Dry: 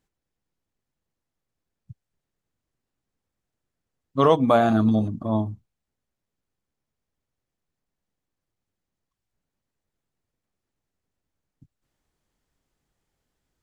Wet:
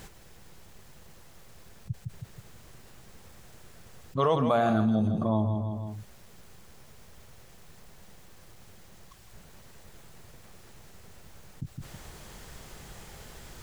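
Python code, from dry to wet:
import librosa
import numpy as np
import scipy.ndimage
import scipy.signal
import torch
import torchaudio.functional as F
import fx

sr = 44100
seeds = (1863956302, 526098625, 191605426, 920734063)

p1 = fx.peak_eq(x, sr, hz=280.0, db=-10.0, octaves=0.3)
p2 = p1 + fx.echo_feedback(p1, sr, ms=160, feedback_pct=23, wet_db=-13.0, dry=0)
p3 = fx.env_flatten(p2, sr, amount_pct=70)
y = F.gain(torch.from_numpy(p3), -8.0).numpy()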